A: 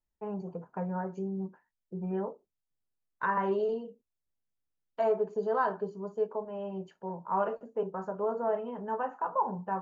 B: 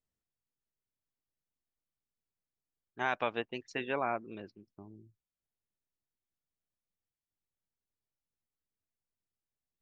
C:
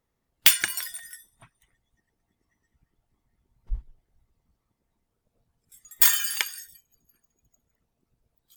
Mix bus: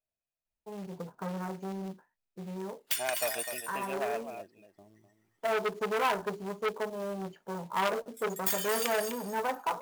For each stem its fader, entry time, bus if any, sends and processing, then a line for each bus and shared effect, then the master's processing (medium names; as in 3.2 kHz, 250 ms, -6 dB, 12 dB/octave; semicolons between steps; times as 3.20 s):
-6.5 dB, 0.45 s, no send, no echo send, treble shelf 3.4 kHz -5.5 dB; level rider gain up to 10 dB; auto duck -9 dB, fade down 1.90 s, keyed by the second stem
-9.0 dB, 0.00 s, no send, echo send -10.5 dB, small resonant body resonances 640/2500 Hz, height 18 dB, ringing for 35 ms
+1.5 dB, 2.45 s, no send, echo send -8.5 dB, high-pass 400 Hz 12 dB/octave; compression 4:1, threshold -29 dBFS, peak gain reduction 15.5 dB; hard clipper -21 dBFS, distortion -12 dB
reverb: none
echo: delay 253 ms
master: short-mantissa float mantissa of 2-bit; transformer saturation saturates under 1.9 kHz